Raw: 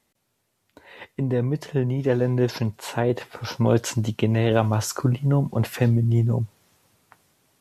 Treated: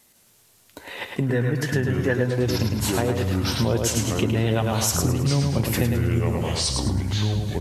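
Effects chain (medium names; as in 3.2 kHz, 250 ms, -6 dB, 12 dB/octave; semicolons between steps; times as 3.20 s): treble shelf 4.2 kHz +11 dB; ever faster or slower copies 135 ms, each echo -5 st, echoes 2, each echo -6 dB; 1.25–2.23 s: peaking EQ 1.7 kHz +13 dB 0.36 oct; feedback delay 106 ms, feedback 39%, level -5 dB; compression 3:1, threshold -29 dBFS, peak gain reduction 12.5 dB; trim +7 dB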